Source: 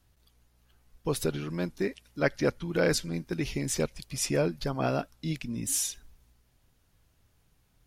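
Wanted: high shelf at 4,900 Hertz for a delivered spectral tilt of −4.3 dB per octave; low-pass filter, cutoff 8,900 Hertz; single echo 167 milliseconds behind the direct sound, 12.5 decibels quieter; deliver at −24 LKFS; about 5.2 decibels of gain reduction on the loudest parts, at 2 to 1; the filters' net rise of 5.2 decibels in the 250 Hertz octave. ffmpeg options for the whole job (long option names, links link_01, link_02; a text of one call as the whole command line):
ffmpeg -i in.wav -af "lowpass=8900,equalizer=frequency=250:width_type=o:gain=7,highshelf=frequency=4900:gain=7,acompressor=threshold=-28dB:ratio=2,aecho=1:1:167:0.237,volume=7dB" out.wav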